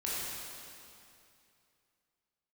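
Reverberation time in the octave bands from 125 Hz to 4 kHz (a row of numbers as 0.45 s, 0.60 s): 2.9 s, 2.7 s, 2.6 s, 2.6 s, 2.5 s, 2.4 s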